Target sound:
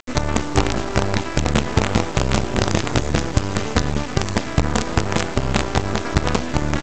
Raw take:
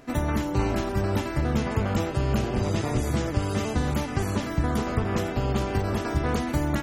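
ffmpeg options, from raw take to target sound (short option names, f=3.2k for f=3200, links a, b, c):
-filter_complex "[0:a]bandreject=f=378.4:t=h:w=4,bandreject=f=756.8:t=h:w=4,bandreject=f=1.1352k:t=h:w=4,bandreject=f=1.5136k:t=h:w=4,bandreject=f=1.892k:t=h:w=4,aresample=16000,acrusher=bits=4:dc=4:mix=0:aa=0.000001,aresample=44100,asplit=2[a][b];[b]adelay=350,highpass=300,lowpass=3.4k,asoftclip=type=hard:threshold=-18.5dB,volume=-17dB[c];[a][c]amix=inputs=2:normalize=0,volume=7dB"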